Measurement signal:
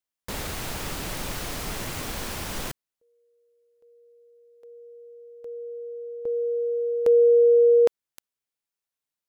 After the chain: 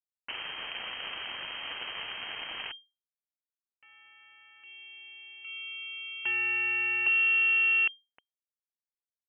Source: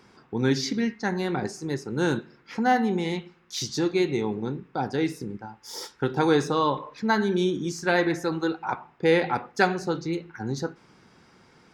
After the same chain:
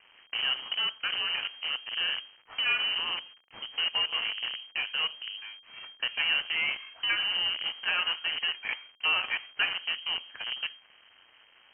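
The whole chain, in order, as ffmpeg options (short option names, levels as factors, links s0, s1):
-filter_complex "[0:a]highpass=50,acrossover=split=170|2400[s0][s1][s2];[s0]acompressor=threshold=0.00631:ratio=4[s3];[s1]acompressor=threshold=0.0126:ratio=1.5[s4];[s2]acompressor=threshold=0.0126:ratio=3[s5];[s3][s4][s5]amix=inputs=3:normalize=0,acrusher=bits=6:dc=4:mix=0:aa=0.000001,lowpass=f=2700:t=q:w=0.5098,lowpass=f=2700:t=q:w=0.6013,lowpass=f=2700:t=q:w=0.9,lowpass=f=2700:t=q:w=2.563,afreqshift=-3200"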